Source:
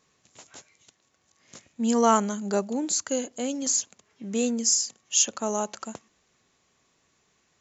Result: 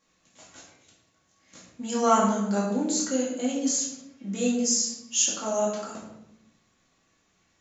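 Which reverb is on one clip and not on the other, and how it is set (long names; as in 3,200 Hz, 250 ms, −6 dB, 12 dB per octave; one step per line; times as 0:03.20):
rectangular room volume 250 cubic metres, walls mixed, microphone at 2.3 metres
level −7 dB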